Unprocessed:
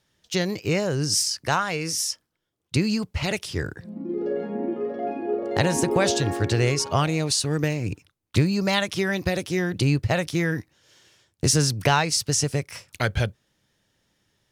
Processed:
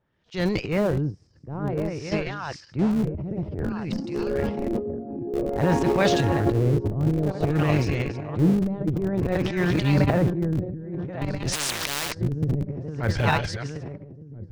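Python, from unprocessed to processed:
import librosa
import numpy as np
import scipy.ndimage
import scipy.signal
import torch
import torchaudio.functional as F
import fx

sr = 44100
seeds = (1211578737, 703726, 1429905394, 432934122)

p1 = fx.reverse_delay_fb(x, sr, ms=666, feedback_pct=59, wet_db=-8.5)
p2 = fx.transient(p1, sr, attack_db=-11, sustain_db=12)
p3 = fx.filter_lfo_lowpass(p2, sr, shape='sine', hz=0.54, low_hz=300.0, high_hz=3900.0, q=0.73)
p4 = fx.schmitt(p3, sr, flips_db=-20.5)
p5 = p3 + (p4 * librosa.db_to_amplitude(-10.0))
p6 = fx.lowpass(p5, sr, hz=5800.0, slope=12, at=(1.98, 2.91))
y = fx.spectral_comp(p6, sr, ratio=10.0, at=(11.52, 12.13), fade=0.02)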